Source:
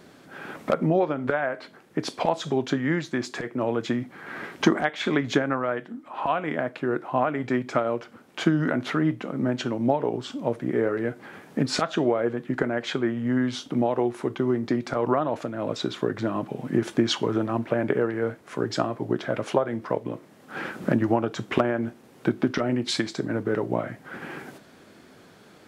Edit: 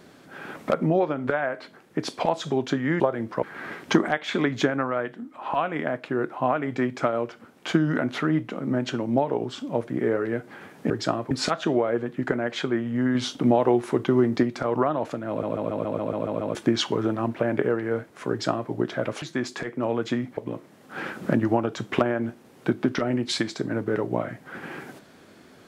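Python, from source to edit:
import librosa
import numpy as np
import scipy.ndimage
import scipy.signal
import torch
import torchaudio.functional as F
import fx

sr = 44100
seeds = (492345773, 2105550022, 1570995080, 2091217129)

y = fx.edit(x, sr, fx.swap(start_s=3.0, length_s=1.15, other_s=19.53, other_length_s=0.43),
    fx.clip_gain(start_s=13.46, length_s=1.28, db=4.0),
    fx.stutter_over(start_s=15.6, slice_s=0.14, count=9),
    fx.duplicate(start_s=18.61, length_s=0.41, to_s=11.62), tone=tone)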